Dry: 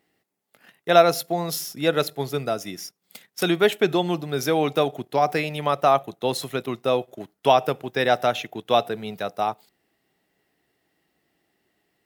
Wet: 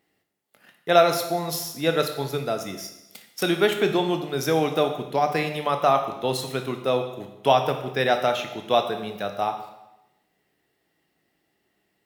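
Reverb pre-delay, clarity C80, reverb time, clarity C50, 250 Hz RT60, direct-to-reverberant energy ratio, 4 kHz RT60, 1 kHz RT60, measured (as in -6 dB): 20 ms, 10.5 dB, 0.95 s, 8.5 dB, 0.95 s, 6.0 dB, 0.90 s, 0.95 s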